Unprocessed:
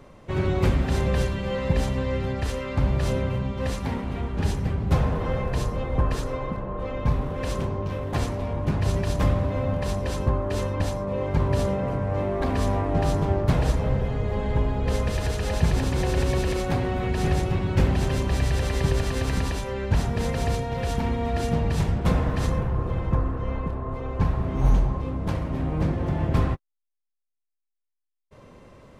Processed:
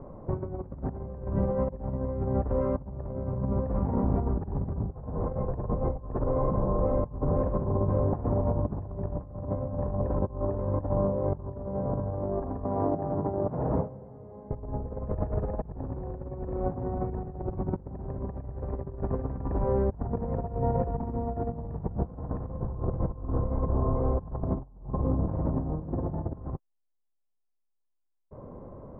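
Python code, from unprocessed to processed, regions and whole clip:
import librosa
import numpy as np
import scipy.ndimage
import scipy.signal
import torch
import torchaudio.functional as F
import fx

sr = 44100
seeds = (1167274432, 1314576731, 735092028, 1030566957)

y = fx.chain(x, sr, fx.dead_time(dead_ms=0.083),
    fx.highpass(hz=140.0, slope=12),
    fx.gate_hold(open_db=-17.0, close_db=-25.0, hold_ms=71.0, range_db=-21, attack_ms=1.4, release_ms=100.0), at=(12.64, 14.51))
y = scipy.signal.sosfilt(scipy.signal.butter(4, 1000.0, 'lowpass', fs=sr, output='sos'), y)
y = fx.over_compress(y, sr, threshold_db=-29.0, ratio=-0.5)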